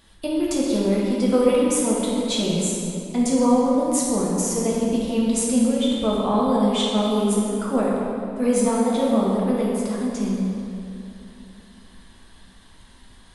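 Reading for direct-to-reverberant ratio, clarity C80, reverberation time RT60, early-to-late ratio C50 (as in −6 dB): −5.5 dB, 0.0 dB, 2.9 s, −2.0 dB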